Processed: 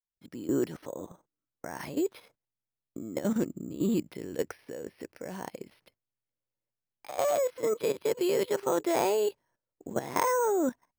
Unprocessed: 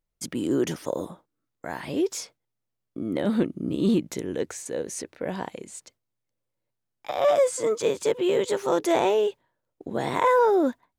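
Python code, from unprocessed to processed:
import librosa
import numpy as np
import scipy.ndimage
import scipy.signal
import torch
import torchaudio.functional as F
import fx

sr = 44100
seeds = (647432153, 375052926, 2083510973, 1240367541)

y = fx.fade_in_head(x, sr, length_s=0.57)
y = fx.high_shelf_res(y, sr, hz=4300.0, db=fx.steps((0.0, 6.5), (3.9, -6.5)), q=1.5)
y = fx.level_steps(y, sr, step_db=13)
y = np.repeat(scipy.signal.resample_poly(y, 1, 6), 6)[:len(y)]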